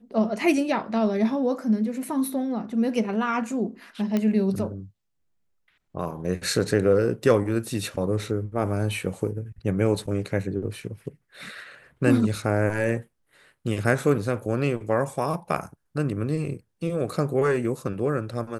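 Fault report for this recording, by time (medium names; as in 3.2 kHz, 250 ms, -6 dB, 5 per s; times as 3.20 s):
4.17 s: pop -13 dBFS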